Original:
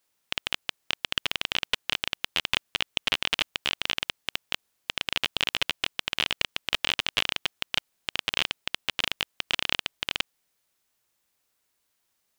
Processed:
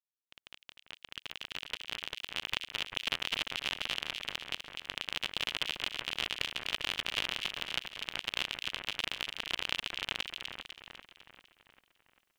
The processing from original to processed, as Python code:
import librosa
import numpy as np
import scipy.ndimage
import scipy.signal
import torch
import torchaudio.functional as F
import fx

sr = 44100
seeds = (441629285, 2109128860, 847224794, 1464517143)

y = fx.fade_in_head(x, sr, length_s=2.9)
y = fx.echo_split(y, sr, split_hz=2100.0, low_ms=395, high_ms=250, feedback_pct=52, wet_db=-5)
y = y * 10.0 ** (-8.0 / 20.0)